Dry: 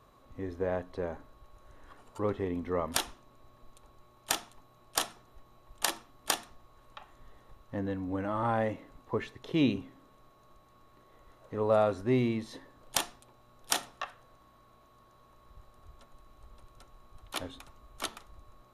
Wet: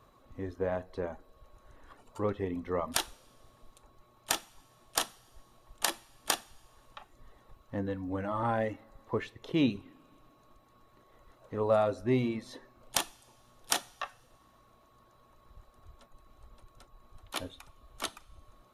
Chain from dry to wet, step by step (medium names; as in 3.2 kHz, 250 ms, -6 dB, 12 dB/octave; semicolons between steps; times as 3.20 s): reverb removal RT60 0.55 s; two-slope reverb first 0.38 s, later 2.2 s, from -17 dB, DRR 15 dB